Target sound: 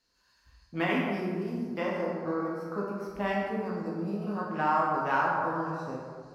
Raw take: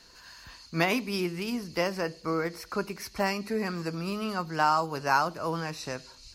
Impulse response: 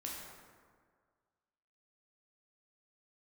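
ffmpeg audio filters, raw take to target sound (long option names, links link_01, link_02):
-filter_complex "[0:a]afwtdn=0.0224[link_01];[1:a]atrim=start_sample=2205[link_02];[link_01][link_02]afir=irnorm=-1:irlink=0"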